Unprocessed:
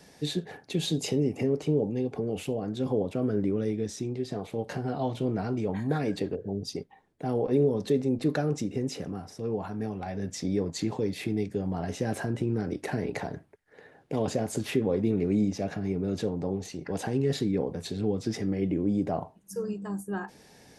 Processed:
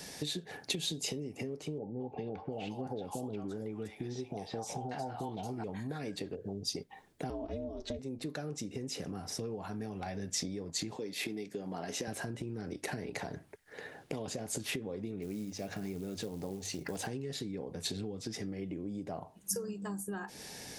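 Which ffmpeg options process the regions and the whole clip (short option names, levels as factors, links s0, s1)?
-filter_complex "[0:a]asettb=1/sr,asplit=3[s0][s1][s2];[s0]atrim=end=1.784[s3];[s1]atrim=start=1.78:end=5.64,asetpts=PTS-STARTPTS,afade=t=in:d=0.004:c=qsin,afade=t=out:st=3.856:d=0.004:c=qsin,equalizer=f=820:t=o:w=0.48:g=13.5,acrossover=split=800|4500[s4][s5][s6];[s5]adelay=220[s7];[s6]adelay=740[s8];[s4][s7][s8]amix=inputs=3:normalize=0,atrim=end_sample=170226[s9];[s2]atrim=start=5.636[s10];[s3][s9]acrossfade=d=0.004:c1=hsin:c2=qsin[s11];[s11][s10]acrossfade=d=0.004:c1=qsin:c2=hsin,asettb=1/sr,asplit=3[s12][s13][s14];[s12]atrim=end=7.304[s15];[s13]atrim=start=7.3:end=7.99,asetpts=PTS-STARTPTS,afade=t=in:d=0.004:c=qsin,afade=t=out:st=0.686:d=0.004:c=qsin,lowpass=f=7000:w=0.5412,lowpass=f=7000:w=1.3066,aecho=1:1:4.4:0.69,atrim=end_sample=30429,aeval=exprs='val(0)*sin(2*PI*180*n/s)':c=same[s16];[s14]atrim=start=7.986[s17];[s15][s16]acrossfade=d=0.004:c1=hsin:c2=qsin[s18];[s18][s17]acrossfade=d=0.004:c1=qsin:c2=hsin,asettb=1/sr,asplit=3[s19][s20][s21];[s19]atrim=end=10.964[s22];[s20]atrim=start=10.96:end=12.08,asetpts=PTS-STARTPTS,afade=t=in:d=0.004:c=qsin,afade=t=out:st=1.116:d=0.004:c=qsin,highpass=230,equalizer=f=9200:w=6:g=-5[s23];[s21]atrim=start=12.076[s24];[s22][s23]acrossfade=d=0.004:c1=hsin:c2=qsin[s25];[s25][s24]acrossfade=d=0.004:c1=qsin:c2=hsin,asettb=1/sr,asplit=3[s26][s27][s28];[s26]atrim=end=15.224[s29];[s27]atrim=start=15.22:end=17.07,asetpts=PTS-STARTPTS,afade=t=in:d=0.004:c=qsin,afade=t=out:st=1.846:d=0.004:c=qsin,bandreject=f=50:t=h:w=6,bandreject=f=100:t=h:w=6,bandreject=f=150:t=h:w=6,acrusher=bits=7:mode=log:mix=0:aa=0.000001[s30];[s28]atrim=start=17.066[s31];[s29][s30]acrossfade=d=0.004:c1=hsin:c2=qsin[s32];[s32][s31]acrossfade=d=0.004:c1=qsin:c2=hsin,acompressor=threshold=0.01:ratio=16,highshelf=f=2300:g=9,volume=1.58"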